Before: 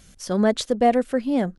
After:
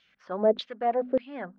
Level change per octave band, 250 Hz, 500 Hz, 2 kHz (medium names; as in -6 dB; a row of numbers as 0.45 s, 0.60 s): -13.0 dB, -4.0 dB, -10.0 dB